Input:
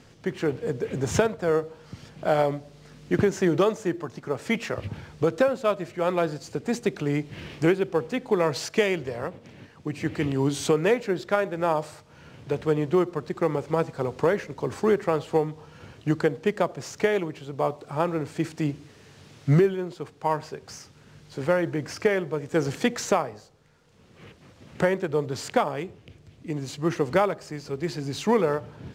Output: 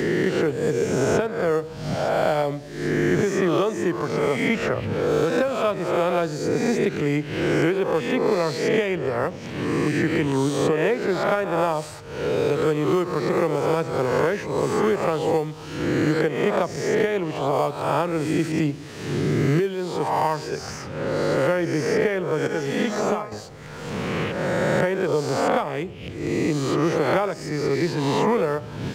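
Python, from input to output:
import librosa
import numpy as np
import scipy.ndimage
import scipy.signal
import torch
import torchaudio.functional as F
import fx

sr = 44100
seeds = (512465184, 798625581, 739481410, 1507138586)

y = fx.spec_swells(x, sr, rise_s=0.92)
y = fx.comb_fb(y, sr, f0_hz=210.0, decay_s=0.3, harmonics='all', damping=0.0, mix_pct=80, at=(22.47, 23.32))
y = fx.band_squash(y, sr, depth_pct=100)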